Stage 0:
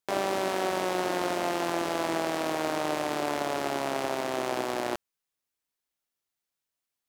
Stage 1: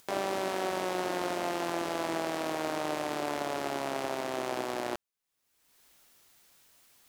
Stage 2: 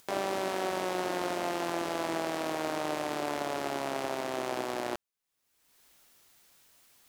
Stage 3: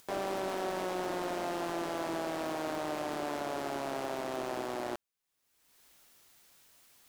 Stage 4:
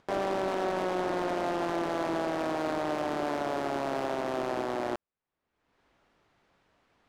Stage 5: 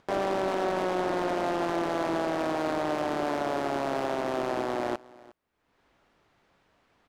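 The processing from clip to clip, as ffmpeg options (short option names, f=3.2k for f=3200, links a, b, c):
-af "acompressor=mode=upward:threshold=-36dB:ratio=2.5,volume=-3.5dB"
-af anull
-af "asoftclip=type=tanh:threshold=-26.5dB"
-af "adynamicsmooth=sensitivity=7.5:basefreq=1.7k,volume=5dB"
-af "aecho=1:1:359:0.0841,volume=2dB"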